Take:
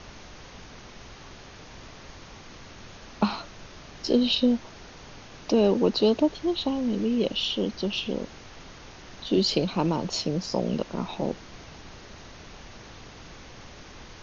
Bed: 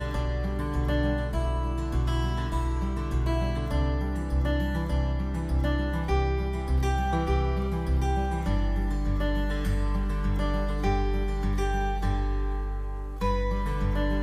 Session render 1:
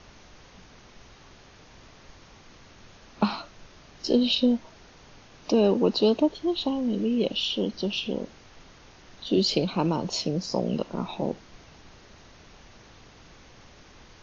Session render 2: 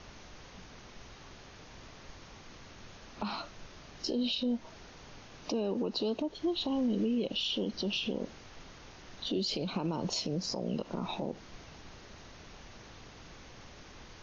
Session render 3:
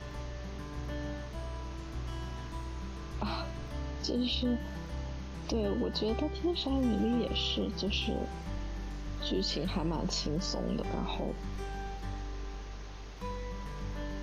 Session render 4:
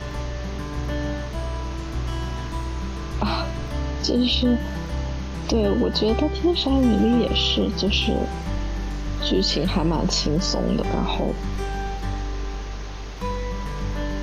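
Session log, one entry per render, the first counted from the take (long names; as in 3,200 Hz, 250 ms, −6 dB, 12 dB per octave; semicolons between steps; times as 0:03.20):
noise reduction from a noise print 6 dB
downward compressor 4 to 1, threshold −27 dBFS, peak gain reduction 9.5 dB; brickwall limiter −24 dBFS, peak gain reduction 10 dB
mix in bed −12.5 dB
level +11.5 dB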